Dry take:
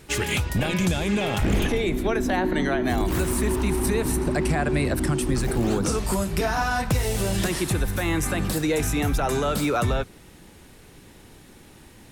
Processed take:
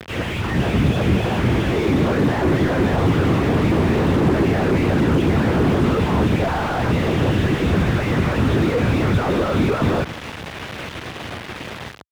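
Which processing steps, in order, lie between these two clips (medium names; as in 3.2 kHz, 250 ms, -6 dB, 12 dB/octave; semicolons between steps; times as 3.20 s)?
saturation -24.5 dBFS, distortion -11 dB; dynamic bell 170 Hz, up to +7 dB, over -45 dBFS, Q 1.3; LPC vocoder at 8 kHz whisper; tilt shelf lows -6 dB, about 1.1 kHz; on a send: reverse echo 1115 ms -15.5 dB; on the sum: level rider gain up to 14 dB; bit crusher 6-bit; high-pass 73 Hz 24 dB/octave; loudness maximiser +15.5 dB; slew-rate limiter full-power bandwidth 180 Hz; trim -6.5 dB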